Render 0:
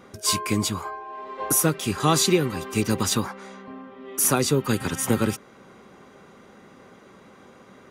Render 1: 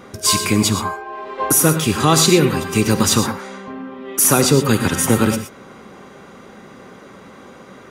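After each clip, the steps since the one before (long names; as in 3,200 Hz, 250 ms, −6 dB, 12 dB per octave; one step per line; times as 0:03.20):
in parallel at +2.5 dB: brickwall limiter −14 dBFS, peak gain reduction 7 dB
on the sum: reverb whose tail is shaped and stops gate 140 ms rising, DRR 8.5 dB
level +1 dB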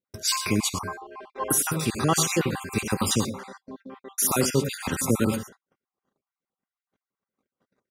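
time-frequency cells dropped at random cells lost 38%
noise gate −36 dBFS, range −43 dB
gain on a spectral selection 0:03.57–0:03.80, 1,100–3,300 Hz −14 dB
level −7 dB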